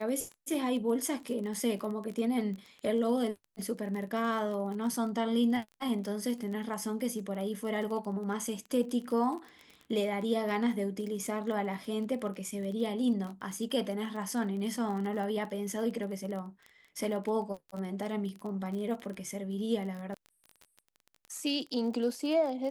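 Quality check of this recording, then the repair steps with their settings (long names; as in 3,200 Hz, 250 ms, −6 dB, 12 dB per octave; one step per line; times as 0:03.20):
surface crackle 24 per second −37 dBFS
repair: click removal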